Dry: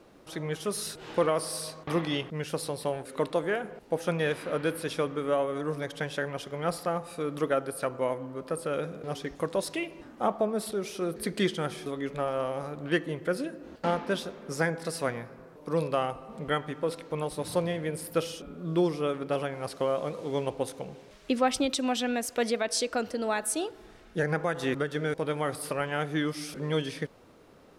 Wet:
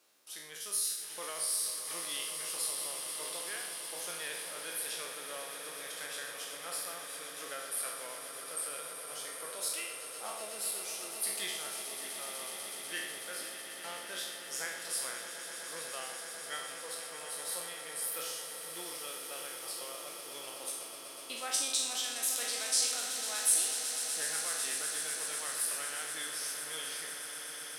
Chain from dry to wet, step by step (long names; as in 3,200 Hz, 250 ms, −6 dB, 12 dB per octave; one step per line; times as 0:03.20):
peak hold with a decay on every bin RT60 0.80 s
first difference
echo that builds up and dies away 124 ms, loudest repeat 8, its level −13 dB